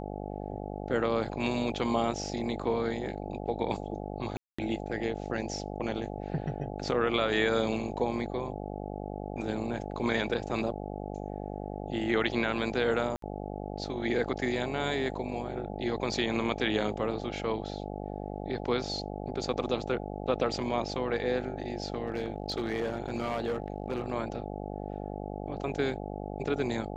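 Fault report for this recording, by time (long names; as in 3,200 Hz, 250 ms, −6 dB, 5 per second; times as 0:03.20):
mains buzz 50 Hz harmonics 17 −38 dBFS
0:04.37–0:04.58: drop-out 215 ms
0:13.16–0:13.22: drop-out 63 ms
0:22.07–0:24.12: clipping −26 dBFS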